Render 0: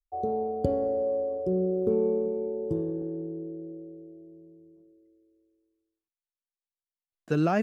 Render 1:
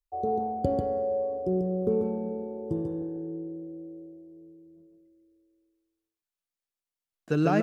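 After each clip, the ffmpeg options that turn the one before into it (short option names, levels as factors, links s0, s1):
-af "aecho=1:1:142:0.668"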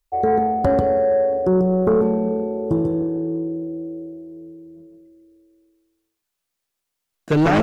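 -af "aeval=exprs='0.266*sin(PI/2*2.51*val(0)/0.266)':c=same"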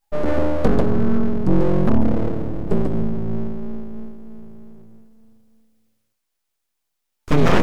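-af "afreqshift=-440,aeval=exprs='abs(val(0))':c=same,volume=1.58"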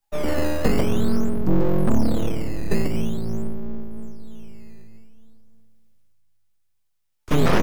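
-filter_complex "[0:a]acrossover=split=120|570[s0][s1][s2];[s0]aecho=1:1:742|1484|2226:0.299|0.0687|0.0158[s3];[s1]acrusher=samples=11:mix=1:aa=0.000001:lfo=1:lforange=17.6:lforate=0.47[s4];[s3][s4][s2]amix=inputs=3:normalize=0,volume=0.708"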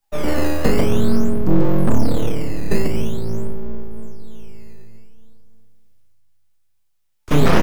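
-filter_complex "[0:a]asplit=2[s0][s1];[s1]adelay=34,volume=0.422[s2];[s0][s2]amix=inputs=2:normalize=0,volume=1.41"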